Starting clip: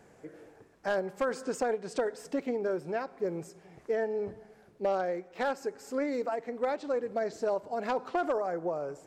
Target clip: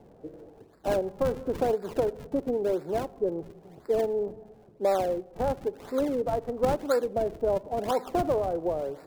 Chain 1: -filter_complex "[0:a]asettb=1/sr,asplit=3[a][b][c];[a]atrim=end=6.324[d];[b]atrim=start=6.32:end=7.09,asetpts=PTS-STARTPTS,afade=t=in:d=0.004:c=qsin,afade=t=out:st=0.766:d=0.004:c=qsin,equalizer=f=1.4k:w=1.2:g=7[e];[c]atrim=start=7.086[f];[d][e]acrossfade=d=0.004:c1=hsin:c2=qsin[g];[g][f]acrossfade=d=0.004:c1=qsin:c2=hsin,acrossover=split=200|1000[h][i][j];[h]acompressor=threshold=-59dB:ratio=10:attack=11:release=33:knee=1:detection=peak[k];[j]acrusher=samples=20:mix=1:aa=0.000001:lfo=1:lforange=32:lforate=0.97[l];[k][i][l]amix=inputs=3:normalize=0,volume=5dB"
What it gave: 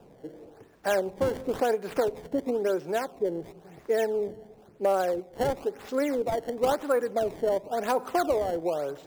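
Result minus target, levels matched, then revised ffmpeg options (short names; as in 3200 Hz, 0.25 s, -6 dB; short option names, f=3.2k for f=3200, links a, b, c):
decimation with a swept rate: distortion -22 dB
-filter_complex "[0:a]asettb=1/sr,asplit=3[a][b][c];[a]atrim=end=6.324[d];[b]atrim=start=6.32:end=7.09,asetpts=PTS-STARTPTS,afade=t=in:d=0.004:c=qsin,afade=t=out:st=0.766:d=0.004:c=qsin,equalizer=f=1.4k:w=1.2:g=7[e];[c]atrim=start=7.086[f];[d][e]acrossfade=d=0.004:c1=hsin:c2=qsin[g];[g][f]acrossfade=d=0.004:c1=qsin:c2=hsin,acrossover=split=200|1000[h][i][j];[h]acompressor=threshold=-59dB:ratio=10:attack=11:release=33:knee=1:detection=peak[k];[j]acrusher=samples=70:mix=1:aa=0.000001:lfo=1:lforange=112:lforate=0.97[l];[k][i][l]amix=inputs=3:normalize=0,volume=5dB"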